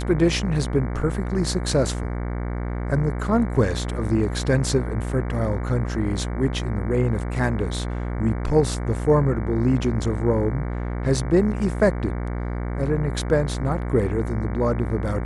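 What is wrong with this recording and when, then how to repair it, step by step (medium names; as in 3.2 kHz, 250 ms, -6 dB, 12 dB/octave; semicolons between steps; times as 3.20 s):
buzz 60 Hz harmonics 38 -27 dBFS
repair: de-hum 60 Hz, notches 38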